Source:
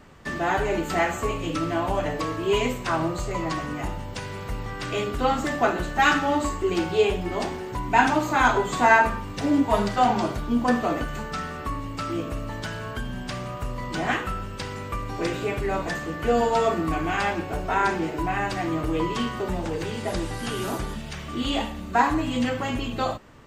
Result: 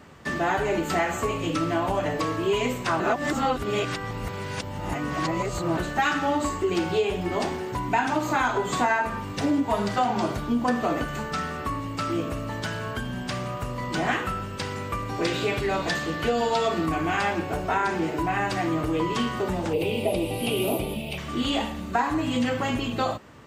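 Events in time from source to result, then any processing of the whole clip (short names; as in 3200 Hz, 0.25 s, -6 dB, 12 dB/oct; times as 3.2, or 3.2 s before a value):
3–5.77 reverse
15.25–16.86 bell 3900 Hz +8.5 dB 1.1 oct
19.73–21.18 EQ curve 160 Hz 0 dB, 630 Hz +7 dB, 1700 Hz -20 dB, 2500 Hz +9 dB, 6600 Hz -14 dB, 11000 Hz +9 dB
whole clip: compressor 6:1, threshold -22 dBFS; HPF 69 Hz; gain +2 dB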